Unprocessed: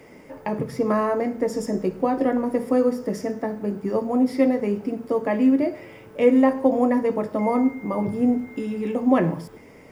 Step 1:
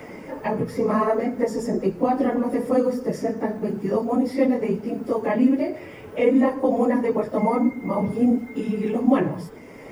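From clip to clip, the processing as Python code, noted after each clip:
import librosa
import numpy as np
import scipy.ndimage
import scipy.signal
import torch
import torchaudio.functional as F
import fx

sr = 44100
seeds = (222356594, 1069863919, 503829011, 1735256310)

y = fx.phase_scramble(x, sr, seeds[0], window_ms=50)
y = fx.band_squash(y, sr, depth_pct=40)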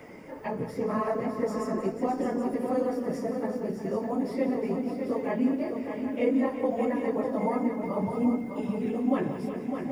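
y = fx.echo_multitap(x, sr, ms=(177, 361, 606, 777), db=(-12.5, -11.0, -7.0, -10.0))
y = y * 10.0 ** (-8.0 / 20.0)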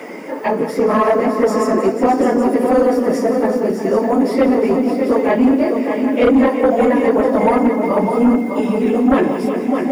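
y = scipy.signal.sosfilt(scipy.signal.butter(4, 220.0, 'highpass', fs=sr, output='sos'), x)
y = fx.fold_sine(y, sr, drive_db=5, ceiling_db=-14.5)
y = y * 10.0 ** (7.5 / 20.0)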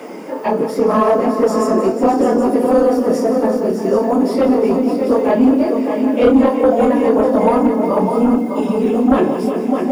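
y = fx.peak_eq(x, sr, hz=2000.0, db=-8.5, octaves=0.52)
y = fx.doubler(y, sr, ms=27.0, db=-7.5)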